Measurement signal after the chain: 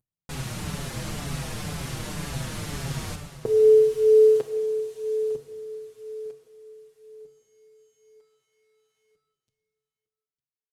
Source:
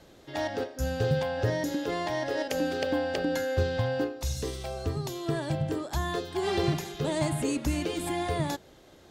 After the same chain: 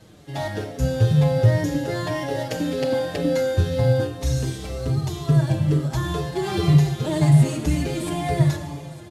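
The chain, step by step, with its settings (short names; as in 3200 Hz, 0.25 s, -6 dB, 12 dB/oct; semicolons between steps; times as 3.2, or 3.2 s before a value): CVSD 64 kbps; bell 140 Hz +13.5 dB 0.88 oct; echo 0.905 s -18 dB; plate-style reverb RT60 1.9 s, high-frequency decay 0.95×, pre-delay 0 ms, DRR 5.5 dB; endless flanger 5.9 ms -2 Hz; gain +5 dB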